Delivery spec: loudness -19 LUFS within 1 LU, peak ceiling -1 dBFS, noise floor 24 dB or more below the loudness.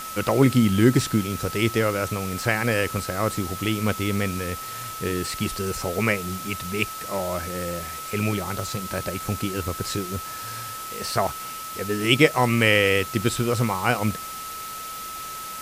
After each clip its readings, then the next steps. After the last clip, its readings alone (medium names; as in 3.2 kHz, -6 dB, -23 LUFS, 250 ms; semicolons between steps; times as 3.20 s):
steady tone 1.3 kHz; tone level -34 dBFS; noise floor -35 dBFS; noise floor target -49 dBFS; loudness -24.5 LUFS; peak level -2.5 dBFS; loudness target -19.0 LUFS
-> band-stop 1.3 kHz, Q 30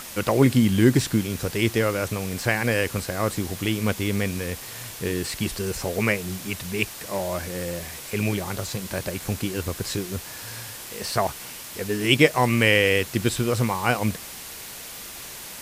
steady tone not found; noise floor -39 dBFS; noise floor target -49 dBFS
-> noise reduction 10 dB, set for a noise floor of -39 dBFS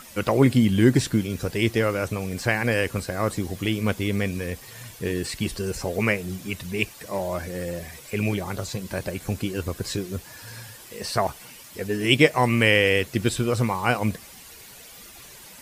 noise floor -45 dBFS; noise floor target -49 dBFS
-> noise reduction 6 dB, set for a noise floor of -45 dBFS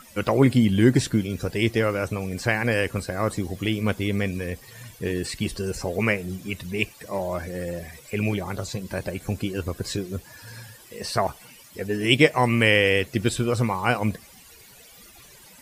noise floor -49 dBFS; loudness -24.5 LUFS; peak level -2.5 dBFS; loudness target -19.0 LUFS
-> trim +5.5 dB; peak limiter -1 dBFS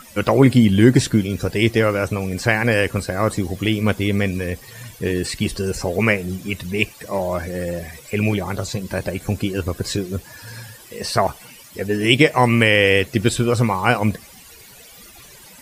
loudness -19.5 LUFS; peak level -1.0 dBFS; noise floor -44 dBFS